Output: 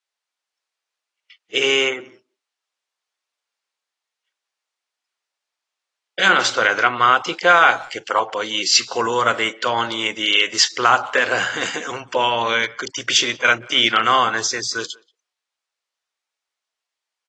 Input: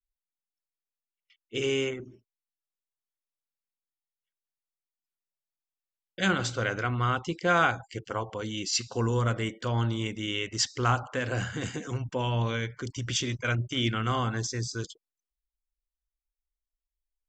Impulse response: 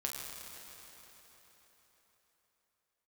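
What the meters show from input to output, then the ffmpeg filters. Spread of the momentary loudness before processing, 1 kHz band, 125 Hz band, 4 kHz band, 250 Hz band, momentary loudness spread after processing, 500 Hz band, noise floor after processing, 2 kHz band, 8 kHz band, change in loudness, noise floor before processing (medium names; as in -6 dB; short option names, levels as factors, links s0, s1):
8 LU, +14.0 dB, -10.5 dB, +15.0 dB, +2.0 dB, 10 LU, +9.5 dB, -85 dBFS, +14.5 dB, +11.0 dB, +12.0 dB, under -85 dBFS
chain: -filter_complex "[0:a]highpass=640,lowpass=5900,asplit=2[s0][s1];[s1]adelay=180,highpass=300,lowpass=3400,asoftclip=type=hard:threshold=0.0794,volume=0.0501[s2];[s0][s2]amix=inputs=2:normalize=0,alimiter=level_in=7.5:limit=0.891:release=50:level=0:latency=1,volume=0.841" -ar 24000 -c:a aac -b:a 32k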